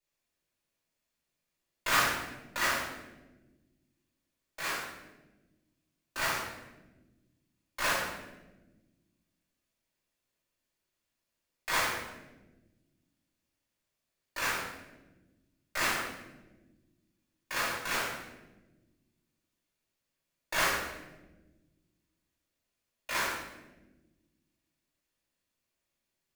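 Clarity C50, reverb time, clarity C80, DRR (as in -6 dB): 0.5 dB, 1.2 s, 4.0 dB, -12.0 dB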